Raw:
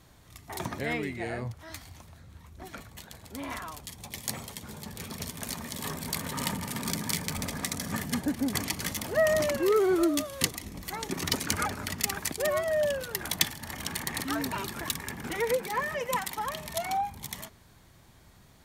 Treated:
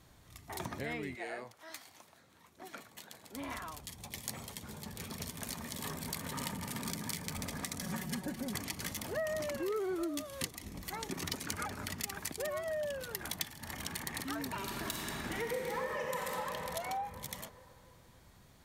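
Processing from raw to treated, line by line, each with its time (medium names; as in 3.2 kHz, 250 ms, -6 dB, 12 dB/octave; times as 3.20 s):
1.14–3.35 s: high-pass 470 Hz -> 200 Hz
7.82–8.54 s: comb 5.4 ms
14.58–16.32 s: reverb throw, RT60 3 s, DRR -2 dB
whole clip: compression 3:1, threshold -32 dBFS; trim -4 dB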